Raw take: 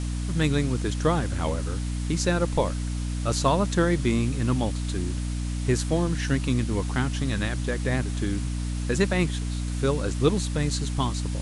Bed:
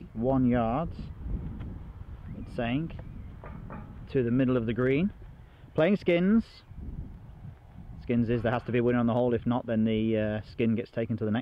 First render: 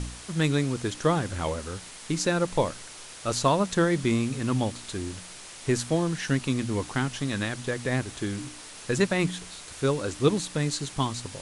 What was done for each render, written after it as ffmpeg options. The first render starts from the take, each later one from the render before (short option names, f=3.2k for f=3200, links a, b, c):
-af "bandreject=f=60:t=h:w=4,bandreject=f=120:t=h:w=4,bandreject=f=180:t=h:w=4,bandreject=f=240:t=h:w=4,bandreject=f=300:t=h:w=4"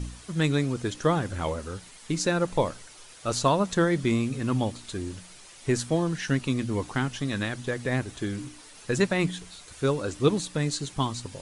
-af "afftdn=nr=8:nf=-44"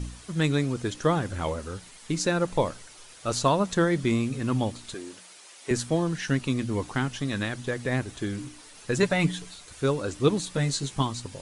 -filter_complex "[0:a]asettb=1/sr,asplit=3[a][b][c];[a]atrim=end=4.944[d];[b]atrim=start=4.94:end=5.71,asetpts=PTS-STARTPTS,afade=t=in:d=0.004:c=qsin,afade=t=out:st=0.766:d=0.004:c=qsin,highpass=360[e];[c]atrim=start=5.706[f];[d][e]acrossfade=d=0.004:c1=hsin:c2=qsin[g];[g][f]acrossfade=d=0.004:c1=qsin:c2=hsin,asettb=1/sr,asplit=3[h][i][j];[h]atrim=end=9.024[k];[i]atrim=start=9.02:end=9.54,asetpts=PTS-STARTPTS,afade=t=in:d=0.004:c=qsin,afade=t=out:st=0.516:d=0.004:c=qsin,aecho=1:1:6.9:0.69,atrim=end_sample=22932[l];[j]atrim=start=9.536[m];[k][l]acrossfade=d=0.004:c1=hsin:c2=qsin[n];[n][m]acrossfade=d=0.004:c1=qsin:c2=hsin,asettb=1/sr,asplit=3[o][p][q];[o]atrim=end=10.454[r];[p]atrim=start=10.45:end=11.02,asetpts=PTS-STARTPTS,afade=t=in:d=0.004:c=qsin,afade=t=out:st=0.566:d=0.004:c=qsin,asplit=2[s][t];[t]adelay=15,volume=-4dB[u];[s][u]amix=inputs=2:normalize=0,atrim=end_sample=25137[v];[q]atrim=start=11.016[w];[r][v]acrossfade=d=0.004:c1=hsin:c2=qsin[x];[x][w]acrossfade=d=0.004:c1=qsin:c2=hsin"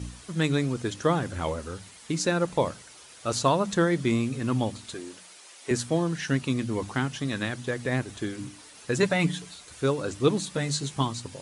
-af "highpass=58,bandreject=f=50:t=h:w=6,bandreject=f=100:t=h:w=6,bandreject=f=150:t=h:w=6,bandreject=f=200:t=h:w=6"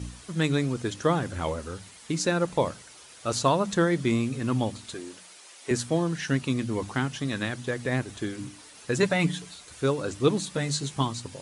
-af anull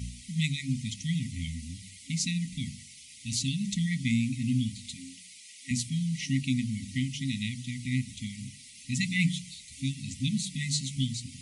-af "afftfilt=real='re*(1-between(b*sr/4096,270,1900))':imag='im*(1-between(b*sr/4096,270,1900))':win_size=4096:overlap=0.75,bandreject=f=47.4:t=h:w=4,bandreject=f=94.8:t=h:w=4,bandreject=f=142.2:t=h:w=4,bandreject=f=189.6:t=h:w=4,bandreject=f=237:t=h:w=4,bandreject=f=284.4:t=h:w=4,bandreject=f=331.8:t=h:w=4,bandreject=f=379.2:t=h:w=4,bandreject=f=426.6:t=h:w=4,bandreject=f=474:t=h:w=4,bandreject=f=521.4:t=h:w=4,bandreject=f=568.8:t=h:w=4,bandreject=f=616.2:t=h:w=4,bandreject=f=663.6:t=h:w=4,bandreject=f=711:t=h:w=4,bandreject=f=758.4:t=h:w=4,bandreject=f=805.8:t=h:w=4,bandreject=f=853.2:t=h:w=4,bandreject=f=900.6:t=h:w=4,bandreject=f=948:t=h:w=4,bandreject=f=995.4:t=h:w=4,bandreject=f=1.0428k:t=h:w=4,bandreject=f=1.0902k:t=h:w=4,bandreject=f=1.1376k:t=h:w=4,bandreject=f=1.185k:t=h:w=4,bandreject=f=1.2324k:t=h:w=4,bandreject=f=1.2798k:t=h:w=4,bandreject=f=1.3272k:t=h:w=4,bandreject=f=1.3746k:t=h:w=4,bandreject=f=1.422k:t=h:w=4,bandreject=f=1.4694k:t=h:w=4,bandreject=f=1.5168k:t=h:w=4,bandreject=f=1.5642k:t=h:w=4,bandreject=f=1.6116k:t=h:w=4,bandreject=f=1.659k:t=h:w=4,bandreject=f=1.7064k:t=h:w=4,bandreject=f=1.7538k:t=h:w=4,bandreject=f=1.8012k:t=h:w=4,bandreject=f=1.8486k:t=h:w=4"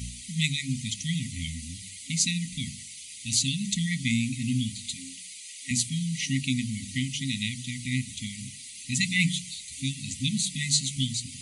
-af "highshelf=f=2k:g=8.5,bandreject=f=5.4k:w=9.6"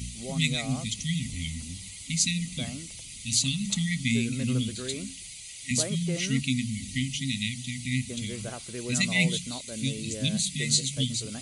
-filter_complex "[1:a]volume=-11.5dB[a];[0:a][a]amix=inputs=2:normalize=0"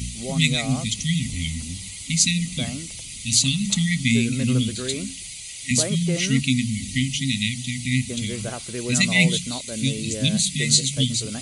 -af "volume=6.5dB,alimiter=limit=-2dB:level=0:latency=1"